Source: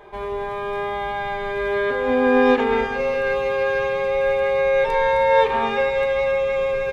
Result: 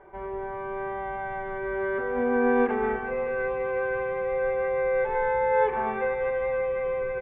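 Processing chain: low-pass 2.2 kHz 24 dB/octave; speed mistake 25 fps video run at 24 fps; trim -6.5 dB

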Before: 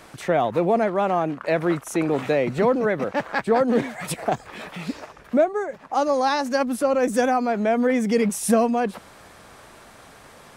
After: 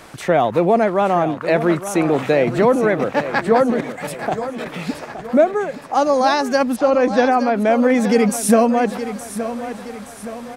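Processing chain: 3.70–4.66 s: level held to a coarse grid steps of 12 dB; 6.76–7.60 s: low-pass 4.9 kHz 24 dB/octave; feedback delay 870 ms, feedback 47%, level -11.5 dB; trim +5 dB

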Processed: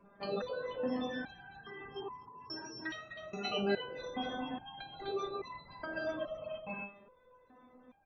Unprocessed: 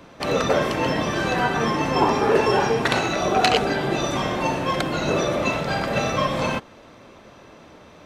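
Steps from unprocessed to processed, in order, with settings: spectral gate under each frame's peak -15 dB strong; 1.07–3.45 s: peaking EQ 640 Hz -12 dB 2 oct; 4.40–4.78 s: spectral selection erased 330–660 Hz; delay 252 ms -6 dB; resonator arpeggio 2.4 Hz 200–1000 Hz

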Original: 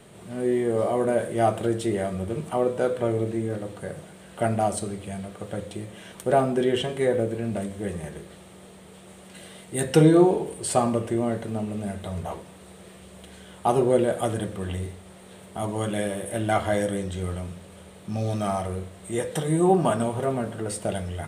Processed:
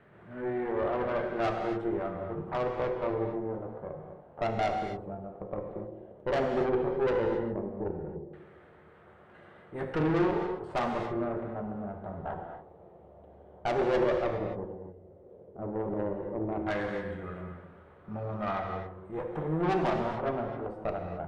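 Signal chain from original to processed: 14.64–15.59 s: compression, threshold -36 dBFS, peak gain reduction 9 dB; LFO low-pass saw down 0.12 Hz 390–1700 Hz; valve stage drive 21 dB, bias 0.8; gated-style reverb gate 300 ms flat, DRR 3.5 dB; trim -4.5 dB

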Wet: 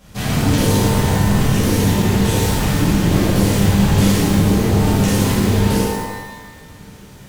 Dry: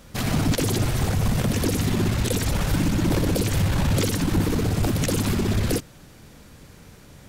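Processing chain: pitch-shifted reverb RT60 1.2 s, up +12 st, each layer -8 dB, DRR -9 dB; trim -4 dB

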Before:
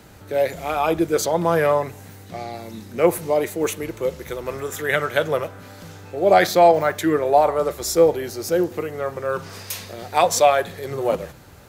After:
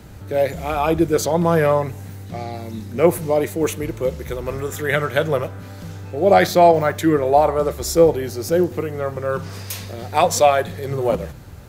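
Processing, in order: bass shelf 200 Hz +11.5 dB

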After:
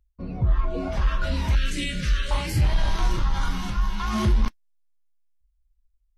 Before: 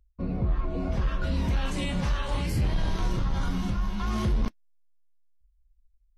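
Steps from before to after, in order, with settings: 1.55–2.31 s: Butterworth band-stop 860 Hz, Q 0.92; spectral noise reduction 9 dB; trim +6 dB

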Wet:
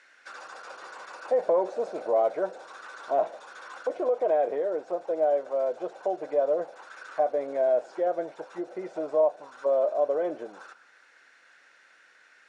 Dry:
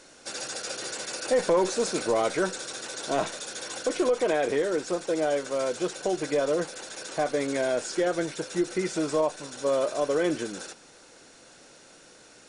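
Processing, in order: auto-wah 650–1900 Hz, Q 3.3, down, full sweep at -26 dBFS; trim +5 dB

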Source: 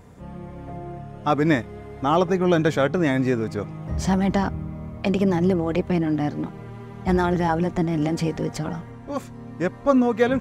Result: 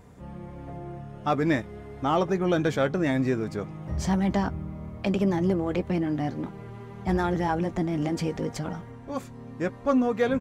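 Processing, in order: doubling 15 ms -14 dB; in parallel at -6 dB: saturation -17.5 dBFS, distortion -12 dB; on the sum: trim -7 dB

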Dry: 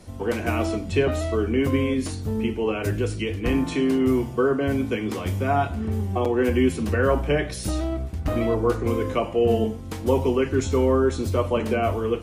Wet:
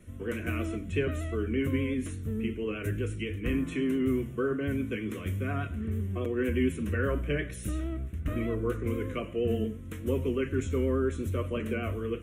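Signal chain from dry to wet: static phaser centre 2 kHz, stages 4; vibrato 8.4 Hz 38 cents; trim -5.5 dB

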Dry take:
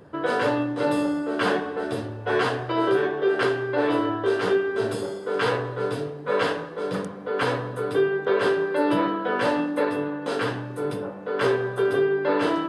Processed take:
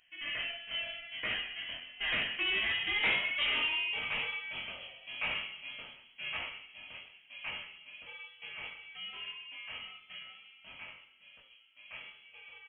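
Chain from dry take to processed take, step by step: Doppler pass-by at 3.12 s, 40 m/s, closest 17 m; high-pass 710 Hz 24 dB/octave; in parallel at +2 dB: gain riding within 4 dB 2 s; on the sum: chorus 0.78 Hz, delay 17.5 ms, depth 5.6 ms; saturation -24.5 dBFS, distortion -13 dB; on a send: delay 129 ms -15.5 dB; on the sum: frequency inversion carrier 3.7 kHz

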